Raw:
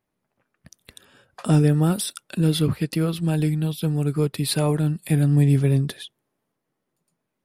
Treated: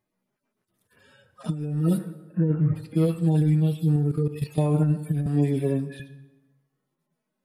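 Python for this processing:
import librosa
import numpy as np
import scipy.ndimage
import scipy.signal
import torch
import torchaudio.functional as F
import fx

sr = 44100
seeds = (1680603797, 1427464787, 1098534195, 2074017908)

y = fx.hpss_only(x, sr, part='harmonic')
y = fx.cheby1_lowpass(y, sr, hz=1900.0, order=4, at=(1.97, 2.75), fade=0.02)
y = fx.rev_plate(y, sr, seeds[0], rt60_s=1.1, hf_ratio=0.75, predelay_ms=0, drr_db=11.0)
y = fx.level_steps(y, sr, step_db=12, at=(3.96, 4.58))
y = fx.highpass(y, sr, hz=250.0, slope=12, at=(5.26, 6.0))
y = fx.over_compress(y, sr, threshold_db=-20.0, ratio=-0.5)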